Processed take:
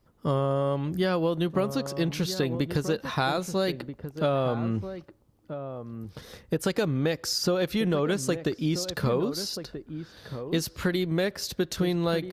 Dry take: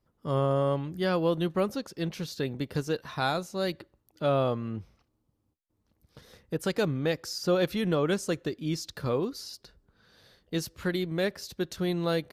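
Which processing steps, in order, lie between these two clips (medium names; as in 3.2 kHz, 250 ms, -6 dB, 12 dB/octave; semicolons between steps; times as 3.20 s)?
compression, threshold -31 dBFS, peak gain reduction 10.5 dB; echo from a far wall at 220 m, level -10 dB; trim +8.5 dB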